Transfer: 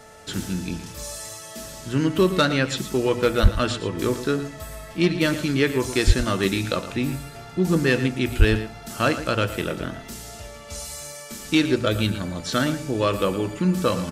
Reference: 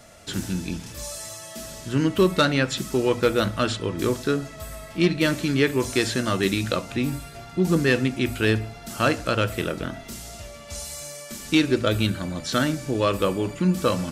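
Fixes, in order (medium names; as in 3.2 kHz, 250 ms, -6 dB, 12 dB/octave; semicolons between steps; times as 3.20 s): de-hum 438.4 Hz, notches 4; 3.42–3.54 s: high-pass 140 Hz 24 dB/octave; 6.06–6.18 s: high-pass 140 Hz 24 dB/octave; 8.38–8.50 s: high-pass 140 Hz 24 dB/octave; inverse comb 114 ms -13 dB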